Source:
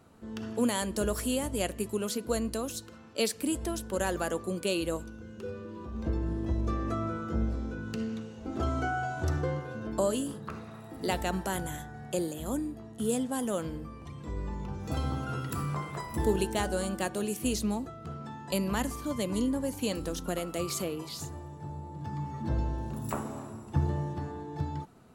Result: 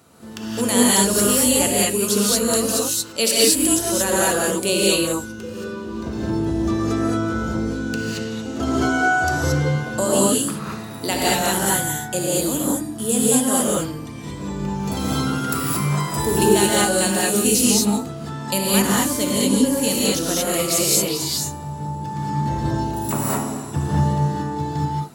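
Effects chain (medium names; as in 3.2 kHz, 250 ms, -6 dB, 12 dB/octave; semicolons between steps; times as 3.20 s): high-pass 94 Hz 12 dB/octave; treble shelf 3.2 kHz +11 dB; gated-style reverb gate 250 ms rising, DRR -5.5 dB; trim +4 dB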